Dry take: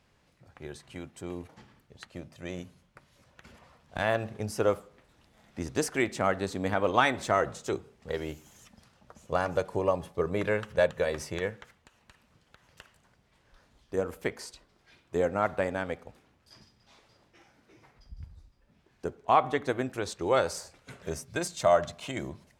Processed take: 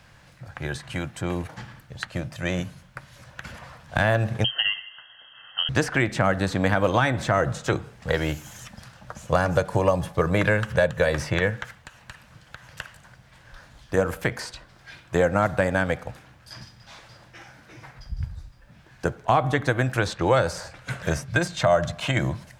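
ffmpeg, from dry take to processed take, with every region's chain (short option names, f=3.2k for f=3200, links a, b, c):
-filter_complex "[0:a]asettb=1/sr,asplit=3[a][b][c];[a]atrim=end=4.444[d];[b]atrim=start=4.44:end=5.69,asetpts=PTS-STARTPTS,afade=t=in:d=0.004:c=qsin,afade=t=out:st=1.246:d=0.004:c=qsin,acompressor=threshold=-28dB:ratio=2.5:attack=3.2:release=140:knee=1:detection=peak,asuperstop=centerf=910:order=20:qfactor=1.8,lowpass=f=2.8k:t=q:w=0.5098,lowpass=f=2.8k:t=q:w=0.6013,lowpass=f=2.8k:t=q:w=0.9,lowpass=f=2.8k:t=q:w=2.563,afreqshift=-3300[e];[c]atrim=start=5.686[f];[d][e]acrossfade=d=0.004:c1=hsin:c2=qsin[g];[g][f]acrossfade=d=0.004:c1=qsin:c2=hsin,equalizer=f=125:t=o:w=0.33:g=7,equalizer=f=250:t=o:w=0.33:g=-7,equalizer=f=400:t=o:w=0.33:g=-11,equalizer=f=1.6k:t=o:w=0.33:g=6,acrossover=split=470|4100[h][i][j];[h]acompressor=threshold=-34dB:ratio=4[k];[i]acompressor=threshold=-36dB:ratio=4[l];[j]acompressor=threshold=-56dB:ratio=4[m];[k][l][m]amix=inputs=3:normalize=0,alimiter=level_in=20dB:limit=-1dB:release=50:level=0:latency=1,volume=-6.5dB"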